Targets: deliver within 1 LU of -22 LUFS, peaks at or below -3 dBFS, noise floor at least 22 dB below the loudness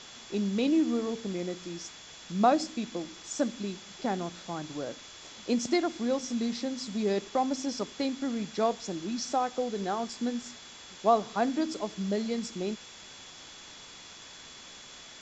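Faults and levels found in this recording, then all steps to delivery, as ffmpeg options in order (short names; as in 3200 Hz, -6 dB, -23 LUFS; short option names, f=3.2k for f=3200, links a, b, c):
steady tone 3400 Hz; tone level -52 dBFS; noise floor -49 dBFS; noise floor target -53 dBFS; loudness -31.0 LUFS; peak -11.0 dBFS; loudness target -22.0 LUFS
-> -af "bandreject=f=3.4k:w=30"
-af "afftdn=nr=6:nf=-49"
-af "volume=9dB,alimiter=limit=-3dB:level=0:latency=1"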